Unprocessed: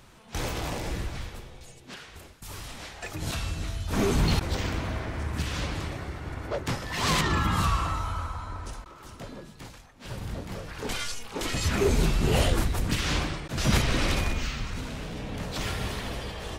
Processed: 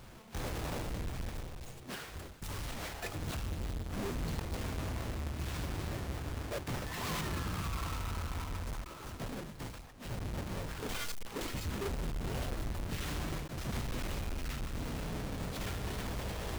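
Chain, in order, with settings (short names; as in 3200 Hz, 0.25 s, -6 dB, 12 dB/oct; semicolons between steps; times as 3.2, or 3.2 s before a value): half-waves squared off; reverse; compressor 6:1, threshold -32 dBFS, peak gain reduction 16 dB; reverse; gain -4 dB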